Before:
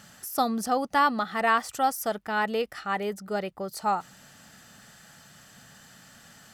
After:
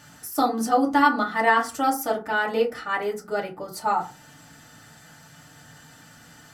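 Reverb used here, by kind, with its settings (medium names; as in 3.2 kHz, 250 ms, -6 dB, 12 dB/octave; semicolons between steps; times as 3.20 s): FDN reverb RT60 0.31 s, low-frequency decay 1.3×, high-frequency decay 0.5×, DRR -3 dB; trim -1.5 dB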